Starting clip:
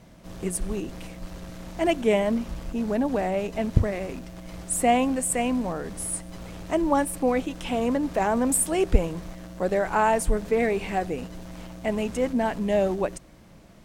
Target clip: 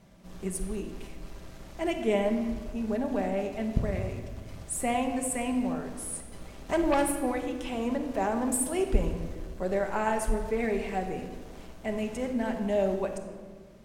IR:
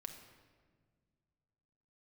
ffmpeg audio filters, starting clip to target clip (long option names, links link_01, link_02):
-filter_complex "[0:a]asettb=1/sr,asplit=3[link_01][link_02][link_03];[link_01]atrim=end=6.694[link_04];[link_02]atrim=start=6.69:end=7.12,asetpts=PTS-STARTPTS,afade=type=in:duration=0.004:curve=qsin,afade=type=out:start_time=0.426:duration=0.004:curve=qsin,aeval=exprs='0.282*(cos(1*acos(clip(val(0)/0.282,-1,1)))-cos(1*PI/2))+0.0794*(cos(5*acos(clip(val(0)/0.282,-1,1)))-cos(5*PI/2))+0.0112*(cos(7*acos(clip(val(0)/0.282,-1,1)))-cos(7*PI/2))':channel_layout=same[link_05];[link_03]atrim=start=7.116[link_06];[link_04][link_05]acrossfade=duration=0.004:curve1=hsin:curve2=qsin[link_07];[link_07][link_06]acrossfade=duration=0.004:curve1=qsin:curve2=hsin[link_08];[1:a]atrim=start_sample=2205[link_09];[link_08][link_09]afir=irnorm=-1:irlink=0,volume=-1.5dB"